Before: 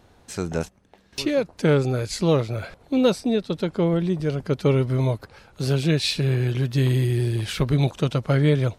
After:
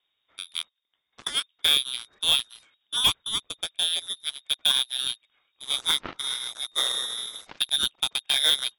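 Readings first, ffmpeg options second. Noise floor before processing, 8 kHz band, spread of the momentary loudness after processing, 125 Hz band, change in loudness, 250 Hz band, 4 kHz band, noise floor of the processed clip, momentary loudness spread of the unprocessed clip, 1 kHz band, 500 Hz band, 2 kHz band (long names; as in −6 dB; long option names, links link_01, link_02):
−56 dBFS, +6.5 dB, 13 LU, −32.5 dB, −2.0 dB, −27.0 dB, +11.0 dB, −78 dBFS, 10 LU, −4.5 dB, −23.0 dB, −0.5 dB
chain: -af "crystalizer=i=4.5:c=0,lowpass=frequency=3200:width_type=q:width=0.5098,lowpass=frequency=3200:width_type=q:width=0.6013,lowpass=frequency=3200:width_type=q:width=0.9,lowpass=frequency=3200:width_type=q:width=2.563,afreqshift=-3800,aeval=exprs='0.531*(cos(1*acos(clip(val(0)/0.531,-1,1)))-cos(1*PI/2))+0.0841*(cos(7*acos(clip(val(0)/0.531,-1,1)))-cos(7*PI/2))':channel_layout=same,volume=-3.5dB"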